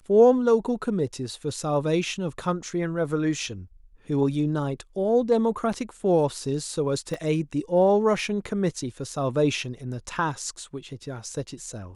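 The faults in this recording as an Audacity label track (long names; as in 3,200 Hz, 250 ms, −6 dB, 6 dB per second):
7.140000	7.140000	drop-out 2.4 ms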